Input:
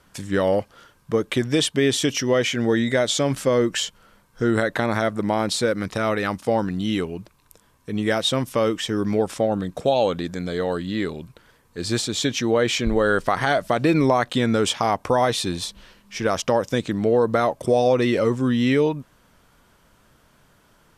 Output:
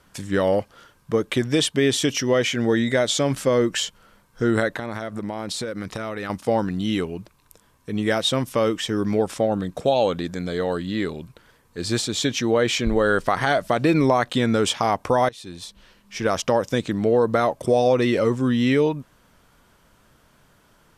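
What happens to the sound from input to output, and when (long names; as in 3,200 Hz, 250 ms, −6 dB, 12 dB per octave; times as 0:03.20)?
0:04.68–0:06.30: downward compressor, threshold −25 dBFS
0:15.29–0:16.27: fade in, from −23 dB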